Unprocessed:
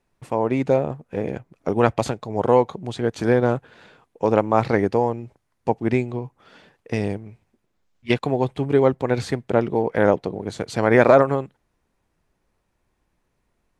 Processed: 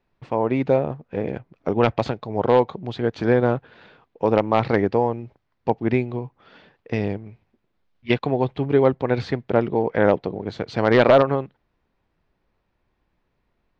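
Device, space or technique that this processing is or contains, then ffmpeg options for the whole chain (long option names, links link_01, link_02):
synthesiser wavefolder: -af "aeval=exprs='0.562*(abs(mod(val(0)/0.562+3,4)-2)-1)':channel_layout=same,lowpass=frequency=4600:width=0.5412,lowpass=frequency=4600:width=1.3066"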